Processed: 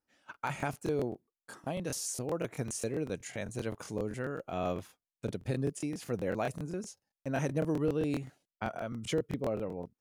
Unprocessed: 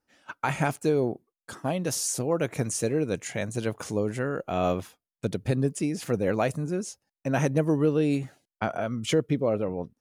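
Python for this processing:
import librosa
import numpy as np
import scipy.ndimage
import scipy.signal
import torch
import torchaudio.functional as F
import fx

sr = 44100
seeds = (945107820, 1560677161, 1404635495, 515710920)

y = fx.buffer_crackle(x, sr, first_s=0.32, period_s=0.13, block=1024, kind='repeat')
y = F.gain(torch.from_numpy(y), -8.0).numpy()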